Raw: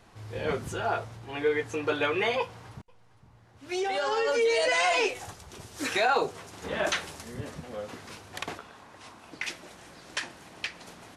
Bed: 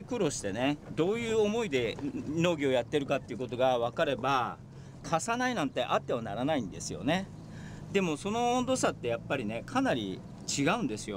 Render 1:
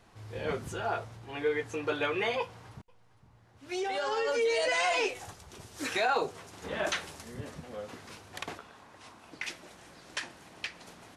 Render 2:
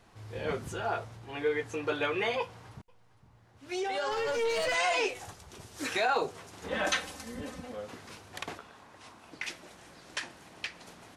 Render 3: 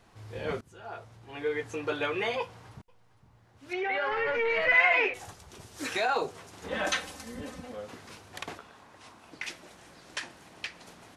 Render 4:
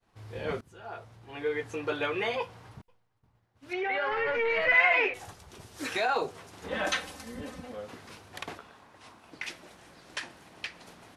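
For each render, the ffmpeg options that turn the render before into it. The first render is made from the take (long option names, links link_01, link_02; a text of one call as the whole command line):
ffmpeg -i in.wav -af "volume=-3.5dB" out.wav
ffmpeg -i in.wav -filter_complex "[0:a]asettb=1/sr,asplit=3[link_01][link_02][link_03];[link_01]atrim=end=4.114[link_04];[link_02]atrim=start=4.11:end=4.75,asetpts=PTS-STARTPTS,afade=type=in:duration=0.004:curve=qsin,afade=type=out:start_time=0.636:duration=0.004:curve=qsin,aeval=exprs='clip(val(0),-1,0.0299)':channel_layout=same[link_05];[link_03]atrim=start=4.746[link_06];[link_04][link_05]acrossfade=duration=0.004:curve1=hsin:curve2=qsin[link_07];[link_07][link_06]acrossfade=duration=0.004:curve1=qsin:curve2=hsin,asettb=1/sr,asplit=3[link_08][link_09][link_10];[link_08]atrim=end=6.714[link_11];[link_09]atrim=start=6.71:end=7.72,asetpts=PTS-STARTPTS,afade=type=in:duration=0.004:curve=qsin,afade=type=out:start_time=1.006:duration=0.004:curve=qsin,aecho=1:1:3.9:0.93,atrim=end_sample=44541[link_12];[link_10]atrim=start=7.716[link_13];[link_11][link_12]acrossfade=duration=0.004:curve1=hsin:curve2=qsin[link_14];[link_14][link_13]acrossfade=duration=0.004:curve1=qsin:curve2=hsin" out.wav
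ffmpeg -i in.wav -filter_complex "[0:a]asettb=1/sr,asplit=3[link_01][link_02][link_03];[link_01]atrim=end=3.734[link_04];[link_02]atrim=start=3.73:end=5.14,asetpts=PTS-STARTPTS,afade=type=in:duration=0.004:curve=qsin,afade=type=out:start_time=1.406:duration=0.004:curve=qsin,lowpass=frequency=2100:width_type=q:width=3.7[link_05];[link_03]atrim=start=5.136[link_06];[link_04][link_05]acrossfade=duration=0.004:curve1=hsin:curve2=qsin[link_07];[link_07][link_06]acrossfade=duration=0.004:curve1=qsin:curve2=hsin,asplit=2[link_08][link_09];[link_08]atrim=end=0.61,asetpts=PTS-STARTPTS,afade=type=out:start_time=0.606:duration=0.004:curve=hsin:silence=0.0707946[link_10];[link_09]atrim=start=0.61,asetpts=PTS-STARTPTS,afade=type=in:duration=1.04:silence=0.0707946[link_11];[link_10][link_11]concat=n=2:v=0:a=1" out.wav
ffmpeg -i in.wav -af "agate=range=-33dB:threshold=-52dB:ratio=3:detection=peak,equalizer=frequency=7000:width_type=o:width=0.76:gain=-3" out.wav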